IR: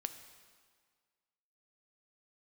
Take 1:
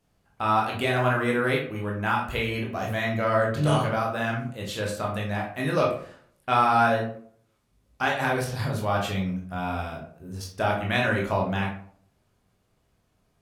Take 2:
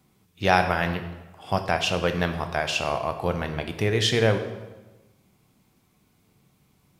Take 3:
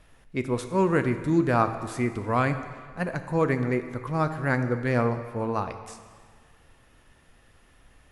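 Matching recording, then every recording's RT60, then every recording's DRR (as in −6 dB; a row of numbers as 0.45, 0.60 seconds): 3; 0.55, 1.1, 1.8 seconds; −2.0, 6.5, 8.5 decibels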